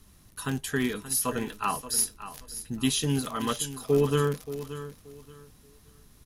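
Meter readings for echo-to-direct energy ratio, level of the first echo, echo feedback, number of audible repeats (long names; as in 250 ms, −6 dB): −12.5 dB, −13.0 dB, 24%, 2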